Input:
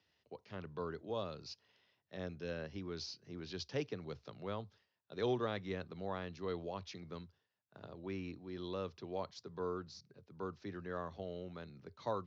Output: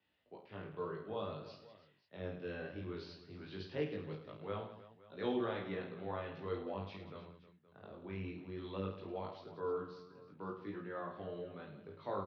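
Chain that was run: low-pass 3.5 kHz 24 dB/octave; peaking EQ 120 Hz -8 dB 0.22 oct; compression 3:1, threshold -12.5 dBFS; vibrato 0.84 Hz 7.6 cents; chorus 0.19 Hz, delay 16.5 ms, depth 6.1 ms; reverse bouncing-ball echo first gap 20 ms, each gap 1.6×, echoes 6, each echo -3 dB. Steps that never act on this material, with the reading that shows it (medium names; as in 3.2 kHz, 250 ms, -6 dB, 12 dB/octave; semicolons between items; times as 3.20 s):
compression, threshold -12.5 dBFS: peak at its input -25.0 dBFS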